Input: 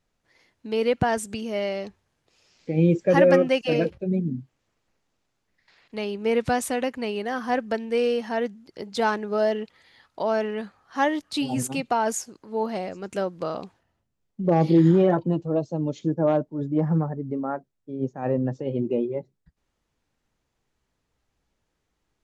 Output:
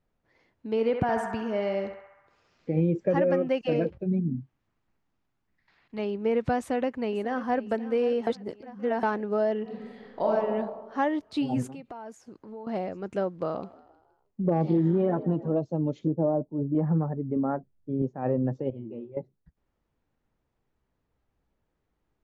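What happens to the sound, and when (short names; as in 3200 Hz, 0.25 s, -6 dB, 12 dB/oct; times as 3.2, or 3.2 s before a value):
0.7–2.81 narrowing echo 67 ms, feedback 79%, band-pass 1300 Hz, level -4 dB
4.03–5.99 bell 510 Hz -8.5 dB
6.58–7.59 echo throw 0.54 s, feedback 60%, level -16 dB
8.27–9.03 reverse
9.62–10.3 reverb throw, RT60 1.4 s, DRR -5 dB
11.68–12.67 compressor 4:1, threshold -39 dBFS
13.38–15.56 frequency-shifting echo 0.157 s, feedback 48%, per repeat +53 Hz, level -20 dB
16.07–16.75 LPF 1000 Hz 24 dB/oct
17.36–18.02 low shelf 190 Hz +12 dB
18.7–19.17 resonator 110 Hz, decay 0.25 s, mix 100%
whole clip: LPF 1200 Hz 6 dB/oct; compressor 4:1, threshold -21 dBFS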